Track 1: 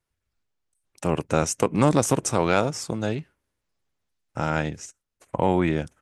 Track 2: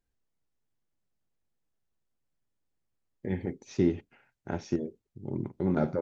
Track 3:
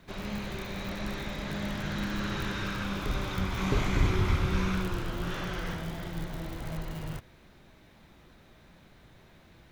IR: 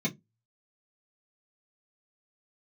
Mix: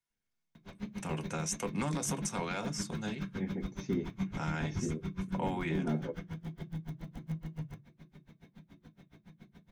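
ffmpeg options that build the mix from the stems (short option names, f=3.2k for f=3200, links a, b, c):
-filter_complex "[0:a]tiltshelf=f=670:g=-7.5,volume=-13.5dB,asplit=2[a][b];[b]volume=-9.5dB[c];[1:a]equalizer=f=110:w=0.31:g=-11.5,adelay=100,volume=-8dB,asplit=2[d][e];[e]volume=-4dB[f];[2:a]acompressor=threshold=-50dB:ratio=1.5,aeval=exprs='val(0)*pow(10,-39*(0.5-0.5*cos(2*PI*7.1*n/s))/20)':c=same,adelay=550,volume=-1.5dB,asplit=2[g][h];[h]volume=-7.5dB[i];[3:a]atrim=start_sample=2205[j];[c][f][i]amix=inputs=3:normalize=0[k];[k][j]afir=irnorm=-1:irlink=0[l];[a][d][g][l]amix=inputs=4:normalize=0,alimiter=limit=-23dB:level=0:latency=1:release=95"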